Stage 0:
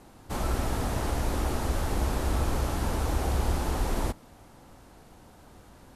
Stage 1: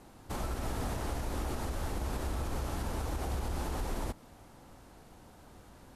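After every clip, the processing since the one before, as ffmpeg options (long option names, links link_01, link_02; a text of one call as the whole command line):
ffmpeg -i in.wav -af "alimiter=limit=-23.5dB:level=0:latency=1:release=119,volume=-2.5dB" out.wav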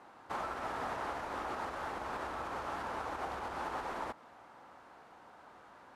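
ffmpeg -i in.wav -af "bandpass=frequency=1200:width_type=q:width=1.1:csg=0,volume=6dB" out.wav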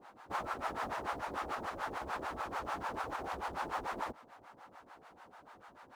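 ffmpeg -i in.wav -filter_complex "[0:a]acrossover=split=550[link_01][link_02];[link_01]aeval=exprs='val(0)*(1-1/2+1/2*cos(2*PI*6.8*n/s))':channel_layout=same[link_03];[link_02]aeval=exprs='val(0)*(1-1/2-1/2*cos(2*PI*6.8*n/s))':channel_layout=same[link_04];[link_03][link_04]amix=inputs=2:normalize=0,asplit=2[link_05][link_06];[link_06]acrusher=bits=5:mode=log:mix=0:aa=0.000001,volume=-5.5dB[link_07];[link_05][link_07]amix=inputs=2:normalize=0,volume=1dB" out.wav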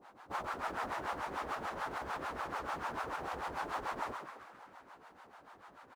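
ffmpeg -i in.wav -filter_complex "[0:a]asplit=8[link_01][link_02][link_03][link_04][link_05][link_06][link_07][link_08];[link_02]adelay=131,afreqshift=87,volume=-5.5dB[link_09];[link_03]adelay=262,afreqshift=174,volume=-11dB[link_10];[link_04]adelay=393,afreqshift=261,volume=-16.5dB[link_11];[link_05]adelay=524,afreqshift=348,volume=-22dB[link_12];[link_06]adelay=655,afreqshift=435,volume=-27.6dB[link_13];[link_07]adelay=786,afreqshift=522,volume=-33.1dB[link_14];[link_08]adelay=917,afreqshift=609,volume=-38.6dB[link_15];[link_01][link_09][link_10][link_11][link_12][link_13][link_14][link_15]amix=inputs=8:normalize=0,volume=-1.5dB" out.wav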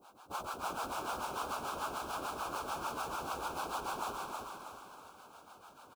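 ffmpeg -i in.wav -af "asuperstop=centerf=1900:order=4:qfactor=2.2,aecho=1:1:320|640|960|1280|1600|1920:0.708|0.311|0.137|0.0603|0.0265|0.0117,crystalizer=i=2.5:c=0,volume=-2dB" out.wav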